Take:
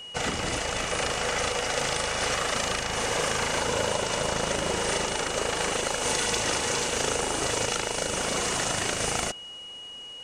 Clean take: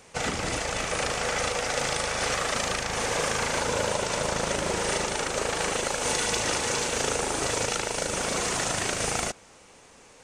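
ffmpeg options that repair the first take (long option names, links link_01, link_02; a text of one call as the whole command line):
ffmpeg -i in.wav -af "bandreject=frequency=2900:width=30" out.wav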